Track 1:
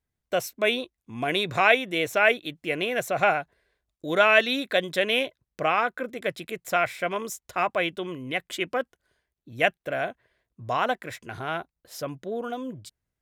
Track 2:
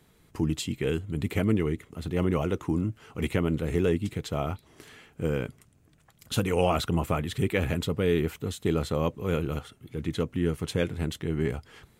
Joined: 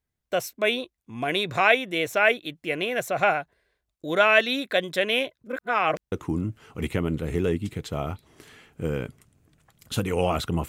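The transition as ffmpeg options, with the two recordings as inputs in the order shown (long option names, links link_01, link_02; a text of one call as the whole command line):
ffmpeg -i cue0.wav -i cue1.wav -filter_complex "[0:a]apad=whole_dur=10.68,atrim=end=10.68,asplit=2[link_01][link_02];[link_01]atrim=end=5.442[link_03];[link_02]atrim=start=5.438:end=6.122,asetpts=PTS-STARTPTS,areverse[link_04];[1:a]atrim=start=2.518:end=7.08[link_05];[link_03][link_04]acrossfade=duration=0.004:curve1=hsin:curve2=hsin[link_06];[link_06][link_05]acrossfade=duration=0.004:curve1=hsin:curve2=hsin" out.wav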